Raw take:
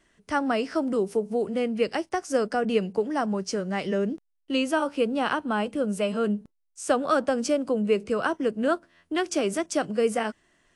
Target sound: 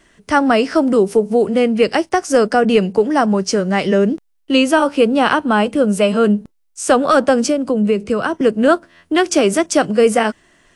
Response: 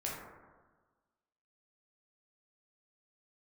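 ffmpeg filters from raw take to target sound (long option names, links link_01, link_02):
-filter_complex "[0:a]asettb=1/sr,asplit=3[link_01][link_02][link_03];[link_01]atrim=end=7.444[link_04];[link_02]atrim=start=7.44:end=8.41,asetpts=PTS-STARTPTS,afade=type=in:duration=0.004:curve=qsin,afade=type=out:start_time=0.966:duration=0.004:curve=qsin,acrossover=split=260[link_05][link_06];[link_06]acompressor=threshold=-31dB:ratio=2.5[link_07];[link_05][link_07]amix=inputs=2:normalize=0[link_08];[link_03]atrim=start=8.406[link_09];[link_04][link_08]acrossfade=duration=0.004:curve1=hsin:curve2=qsin[link_10];[link_10][link_09]acrossfade=duration=0.004:curve1=qsin:curve2=hsin,apsyclip=16.5dB,volume=-4.5dB"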